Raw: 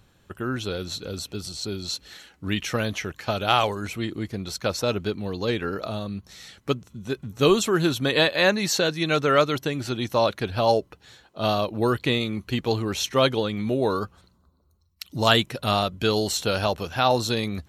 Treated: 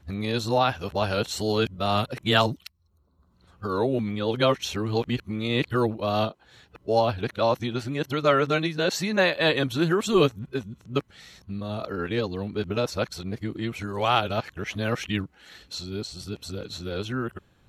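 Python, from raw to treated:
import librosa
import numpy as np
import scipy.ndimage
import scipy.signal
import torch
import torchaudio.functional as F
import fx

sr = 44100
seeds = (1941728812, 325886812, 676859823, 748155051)

y = np.flip(x).copy()
y = fx.bass_treble(y, sr, bass_db=1, treble_db=-6)
y = y * librosa.db_to_amplitude(-1.5)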